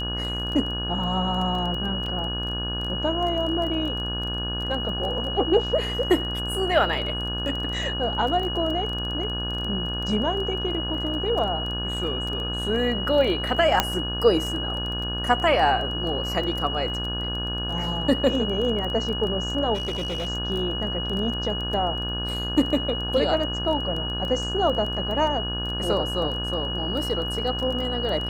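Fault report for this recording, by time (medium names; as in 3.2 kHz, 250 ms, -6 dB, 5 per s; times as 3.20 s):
buzz 60 Hz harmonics 29 -31 dBFS
crackle 15 per s -29 dBFS
whine 2.9 kHz -29 dBFS
2.06 s: dropout 3.4 ms
13.80 s: pop -3 dBFS
19.74–20.29 s: clipped -24.5 dBFS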